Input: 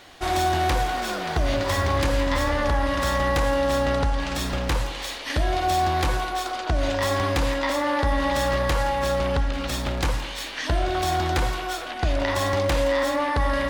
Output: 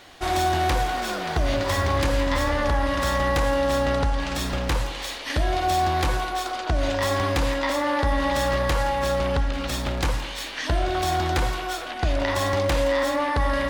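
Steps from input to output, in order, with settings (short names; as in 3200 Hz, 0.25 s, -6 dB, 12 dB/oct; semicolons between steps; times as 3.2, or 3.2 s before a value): 7.09–7.59 crackle 61/s -39 dBFS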